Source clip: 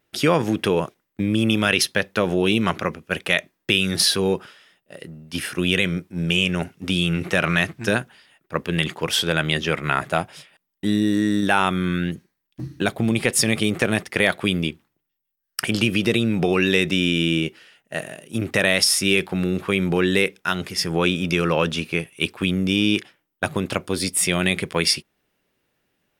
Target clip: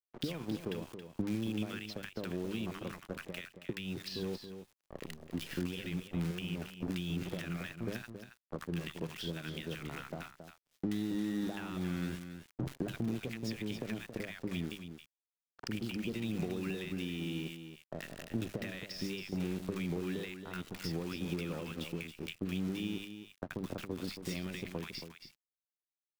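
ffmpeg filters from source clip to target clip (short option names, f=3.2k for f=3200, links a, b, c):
-filter_complex "[0:a]lowpass=f=5k:w=0.5412,lowpass=f=5k:w=1.3066,lowshelf=f=82:g=-7,bandreject=f=50:t=h:w=6,bandreject=f=100:t=h:w=6,bandreject=f=150:t=h:w=6,bandreject=f=200:t=h:w=6,acrusher=bits=6:dc=4:mix=0:aa=0.000001,acompressor=threshold=-30dB:ratio=10,acrossover=split=1000[a][b];[b]adelay=80[c];[a][c]amix=inputs=2:normalize=0,aeval=exprs='sgn(val(0))*max(abs(val(0))-0.00473,0)':c=same,acrossover=split=330[d][e];[e]acompressor=threshold=-46dB:ratio=3[f];[d][f]amix=inputs=2:normalize=0,asplit=2[g][h];[h]aecho=0:1:274:0.335[i];[g][i]amix=inputs=2:normalize=0,volume=1dB"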